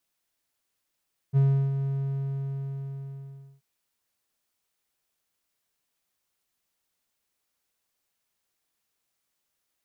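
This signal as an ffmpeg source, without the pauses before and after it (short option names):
-f lavfi -i "aevalsrc='0.188*(1-4*abs(mod(137*t+0.25,1)-0.5))':d=2.28:s=44100,afade=t=in:d=0.037,afade=t=out:st=0.037:d=0.344:silence=0.376,afade=t=out:st=0.51:d=1.77"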